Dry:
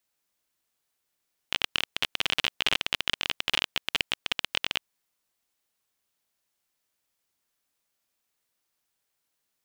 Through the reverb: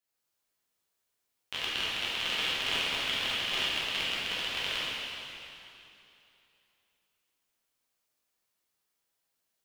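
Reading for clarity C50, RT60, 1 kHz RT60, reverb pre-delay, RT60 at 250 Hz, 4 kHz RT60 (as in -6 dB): -4.0 dB, 2.9 s, 2.9 s, 5 ms, 3.0 s, 2.7 s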